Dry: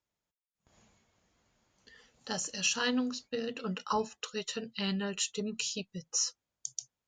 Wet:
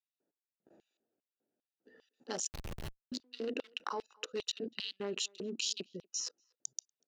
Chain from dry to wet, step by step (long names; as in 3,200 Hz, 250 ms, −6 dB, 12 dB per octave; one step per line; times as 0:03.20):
adaptive Wiener filter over 41 samples
parametric band 1,400 Hz +3.5 dB 2.9 octaves
output level in coarse steps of 24 dB
auto-filter high-pass square 2.5 Hz 320–3,500 Hz
far-end echo of a speakerphone 240 ms, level −27 dB
0:02.48–0:03.12: comparator with hysteresis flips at −40 dBFS
level +9 dB